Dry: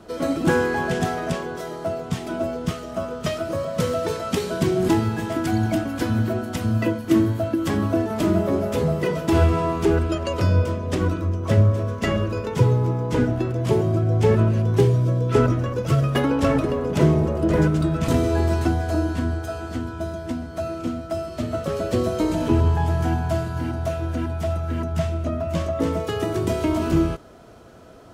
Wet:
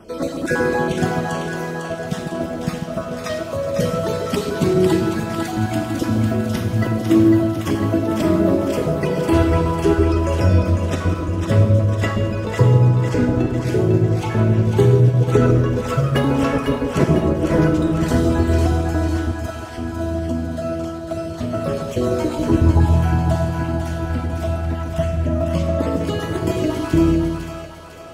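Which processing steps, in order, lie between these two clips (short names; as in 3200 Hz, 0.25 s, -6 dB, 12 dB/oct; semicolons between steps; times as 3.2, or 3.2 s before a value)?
random spectral dropouts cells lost 30%; split-band echo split 620 Hz, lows 0.145 s, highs 0.501 s, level -5.5 dB; Schroeder reverb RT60 0.93 s, combs from 33 ms, DRR 6.5 dB; gain +2 dB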